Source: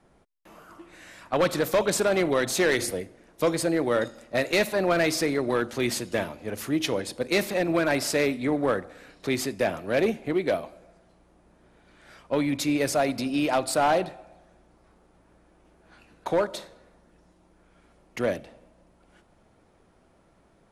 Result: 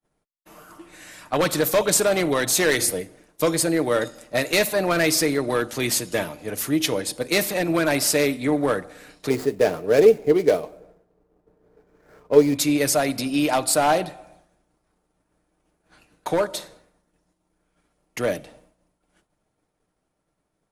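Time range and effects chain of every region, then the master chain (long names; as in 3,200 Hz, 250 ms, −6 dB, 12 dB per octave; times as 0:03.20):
0:09.30–0:12.55: running median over 15 samples + parametric band 440 Hz +14.5 dB 0.29 octaves + one half of a high-frequency compander decoder only
whole clip: comb filter 6.6 ms, depth 30%; downward expander −49 dBFS; high-shelf EQ 6,300 Hz +11.5 dB; level +2 dB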